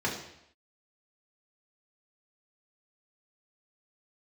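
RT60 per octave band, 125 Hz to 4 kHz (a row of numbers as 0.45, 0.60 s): 0.75, 0.75, 0.75, 0.75, 0.80, 0.75 s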